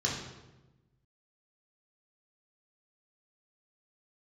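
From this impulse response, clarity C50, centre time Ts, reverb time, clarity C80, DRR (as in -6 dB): 3.0 dB, 50 ms, 1.1 s, 5.5 dB, -4.0 dB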